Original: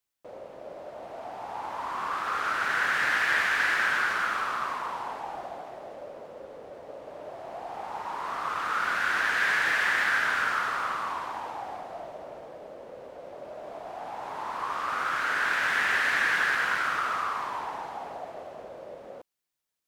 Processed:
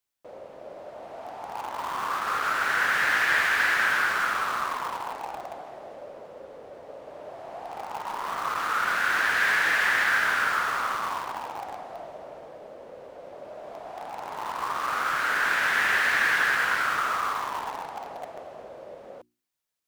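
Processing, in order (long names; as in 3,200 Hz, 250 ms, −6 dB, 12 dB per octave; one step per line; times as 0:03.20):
mains-hum notches 60/120/180/240/300/360 Hz
in parallel at −11 dB: bit reduction 5 bits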